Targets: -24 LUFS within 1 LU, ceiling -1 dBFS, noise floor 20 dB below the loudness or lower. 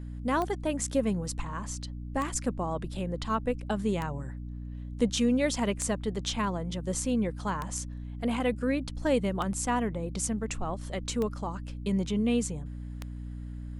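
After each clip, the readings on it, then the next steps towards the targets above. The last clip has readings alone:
clicks 8; hum 60 Hz; harmonics up to 300 Hz; hum level -36 dBFS; loudness -31.0 LUFS; peak -13.5 dBFS; loudness target -24.0 LUFS
-> de-click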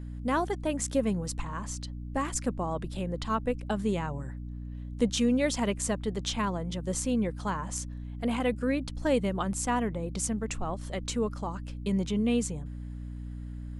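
clicks 0; hum 60 Hz; harmonics up to 300 Hz; hum level -36 dBFS
-> de-hum 60 Hz, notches 5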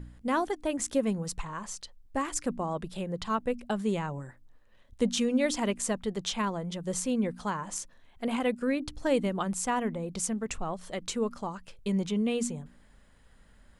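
hum none; loudness -31.5 LUFS; peak -13.5 dBFS; loudness target -24.0 LUFS
-> gain +7.5 dB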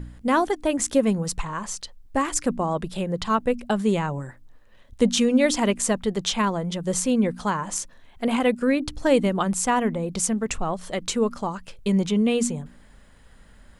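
loudness -24.0 LUFS; peak -6.0 dBFS; noise floor -51 dBFS

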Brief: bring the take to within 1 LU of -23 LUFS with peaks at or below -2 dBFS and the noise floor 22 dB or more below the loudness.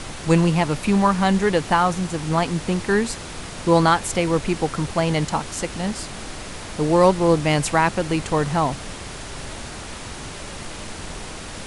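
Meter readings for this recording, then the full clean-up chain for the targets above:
noise floor -35 dBFS; noise floor target -43 dBFS; loudness -20.5 LUFS; peak -2.5 dBFS; loudness target -23.0 LUFS
-> noise print and reduce 8 dB; gain -2.5 dB

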